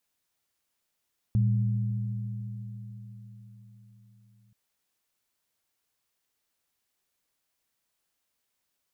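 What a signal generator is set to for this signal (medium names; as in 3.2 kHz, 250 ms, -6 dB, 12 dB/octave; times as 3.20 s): sine partials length 3.18 s, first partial 114 Hz, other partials 200 Hz, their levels -8.5 dB, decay 4.71 s, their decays 4.88 s, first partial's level -20 dB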